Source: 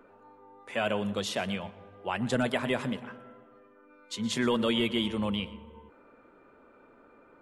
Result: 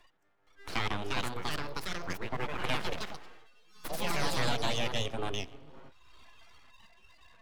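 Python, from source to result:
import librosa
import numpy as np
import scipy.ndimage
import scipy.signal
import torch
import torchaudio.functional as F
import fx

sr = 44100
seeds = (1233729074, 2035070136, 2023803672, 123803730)

y = fx.noise_reduce_blind(x, sr, reduce_db=28)
y = fx.ladder_lowpass(y, sr, hz=1700.0, resonance_pct=25, at=(1.28, 2.63), fade=0.02)
y = fx.cheby_harmonics(y, sr, harmonics=(3, 7), levels_db=(-18, -28), full_scale_db=-16.5)
y = np.abs(y)
y = fx.echo_pitch(y, sr, ms=469, semitones=3, count=3, db_per_echo=-3.0)
y = fx.band_squash(y, sr, depth_pct=70)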